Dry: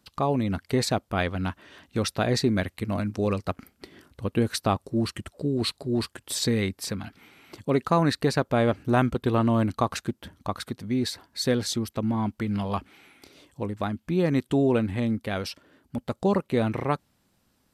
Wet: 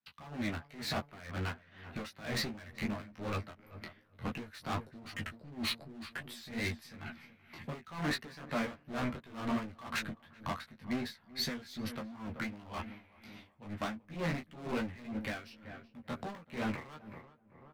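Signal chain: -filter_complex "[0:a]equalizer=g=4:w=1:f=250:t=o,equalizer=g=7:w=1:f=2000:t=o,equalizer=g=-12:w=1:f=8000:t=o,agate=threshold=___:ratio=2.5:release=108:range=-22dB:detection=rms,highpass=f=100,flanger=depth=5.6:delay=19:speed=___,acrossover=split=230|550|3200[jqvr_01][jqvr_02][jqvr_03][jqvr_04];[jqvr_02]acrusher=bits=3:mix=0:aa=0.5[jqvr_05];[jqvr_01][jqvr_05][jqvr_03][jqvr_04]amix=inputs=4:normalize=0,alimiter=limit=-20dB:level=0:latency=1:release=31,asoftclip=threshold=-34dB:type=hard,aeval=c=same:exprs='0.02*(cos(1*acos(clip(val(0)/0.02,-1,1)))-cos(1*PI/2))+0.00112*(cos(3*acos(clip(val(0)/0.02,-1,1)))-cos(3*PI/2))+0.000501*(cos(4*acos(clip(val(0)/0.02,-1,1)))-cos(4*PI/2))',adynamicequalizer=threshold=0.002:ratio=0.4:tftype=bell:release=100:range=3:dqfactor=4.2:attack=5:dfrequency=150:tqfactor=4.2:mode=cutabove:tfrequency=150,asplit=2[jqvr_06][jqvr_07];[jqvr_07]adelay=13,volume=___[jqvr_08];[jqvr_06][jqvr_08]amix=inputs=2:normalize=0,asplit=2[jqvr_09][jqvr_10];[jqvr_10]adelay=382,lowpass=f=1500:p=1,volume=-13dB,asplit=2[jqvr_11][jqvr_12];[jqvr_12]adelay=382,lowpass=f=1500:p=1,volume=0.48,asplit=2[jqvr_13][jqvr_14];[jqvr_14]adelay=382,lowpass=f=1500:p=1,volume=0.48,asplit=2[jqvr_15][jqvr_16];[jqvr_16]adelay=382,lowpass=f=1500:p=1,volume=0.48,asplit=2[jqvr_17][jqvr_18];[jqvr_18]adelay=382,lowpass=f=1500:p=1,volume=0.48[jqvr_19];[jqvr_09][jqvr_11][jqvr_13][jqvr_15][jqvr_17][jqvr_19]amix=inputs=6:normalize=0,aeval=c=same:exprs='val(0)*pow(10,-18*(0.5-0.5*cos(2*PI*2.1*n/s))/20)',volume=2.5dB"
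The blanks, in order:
-57dB, 2.7, -4.5dB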